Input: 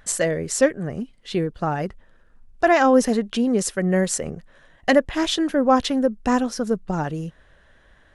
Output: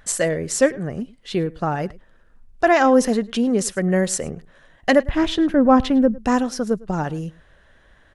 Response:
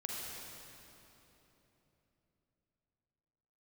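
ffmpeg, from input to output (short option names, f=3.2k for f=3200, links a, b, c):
-filter_complex "[0:a]asettb=1/sr,asplit=3[a][b][c];[a]atrim=end=5.064[d];[b]atrim=start=5.06:end=6.18,asetpts=PTS-STARTPTS,afade=t=in:d=0.004:c=qsin,afade=t=out:st=1.116:d=0.004:c=qsin,bass=f=250:g=10,treble=f=4k:g=-11[e];[c]atrim=start=6.176[f];[d][e]acrossfade=d=0.004:c1=hsin:c2=qsin[g];[g][f]acrossfade=d=0.004:c1=qsin:c2=hsin,asplit=2[h][i];[i]adelay=105,volume=-22dB,highshelf=f=4k:g=-2.36[j];[h][j]amix=inputs=2:normalize=0,volume=1dB"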